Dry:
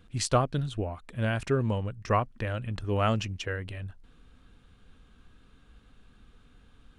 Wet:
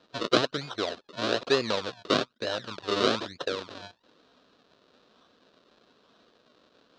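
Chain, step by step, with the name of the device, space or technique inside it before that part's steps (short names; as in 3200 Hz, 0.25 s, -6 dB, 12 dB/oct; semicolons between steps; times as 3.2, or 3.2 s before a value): 2.34–3.59 gate -37 dBFS, range -13 dB; circuit-bent sampling toy (decimation with a swept rate 37×, swing 100% 1.1 Hz; speaker cabinet 440–5200 Hz, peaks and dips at 830 Hz -9 dB, 2100 Hz -10 dB, 3900 Hz +7 dB); gain +7.5 dB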